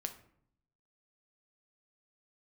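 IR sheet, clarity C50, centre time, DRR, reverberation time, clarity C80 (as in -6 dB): 12.0 dB, 9 ms, 6.5 dB, 0.65 s, 15.5 dB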